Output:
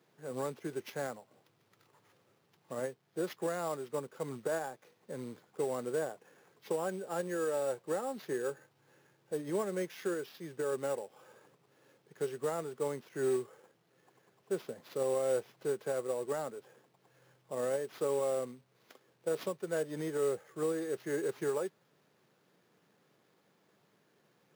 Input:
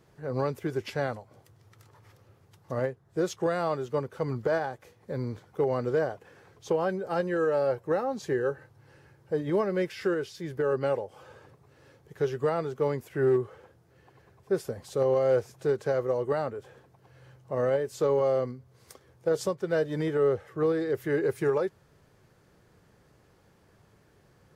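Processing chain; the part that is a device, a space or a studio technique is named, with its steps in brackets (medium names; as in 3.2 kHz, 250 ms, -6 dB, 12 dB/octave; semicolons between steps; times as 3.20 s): early companding sampler (sample-rate reducer 8.4 kHz, jitter 0%; companded quantiser 6-bit); high-pass 160 Hz 24 dB/octave; trim -7.5 dB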